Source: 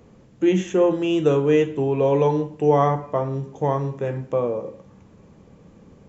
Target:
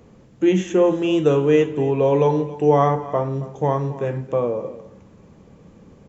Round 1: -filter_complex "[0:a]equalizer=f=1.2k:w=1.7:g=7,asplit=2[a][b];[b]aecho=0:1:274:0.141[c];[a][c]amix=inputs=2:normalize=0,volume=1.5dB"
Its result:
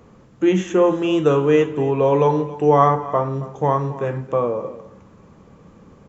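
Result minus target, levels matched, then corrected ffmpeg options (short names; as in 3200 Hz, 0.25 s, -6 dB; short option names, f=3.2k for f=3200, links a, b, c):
1000 Hz band +3.0 dB
-filter_complex "[0:a]asplit=2[a][b];[b]aecho=0:1:274:0.141[c];[a][c]amix=inputs=2:normalize=0,volume=1.5dB"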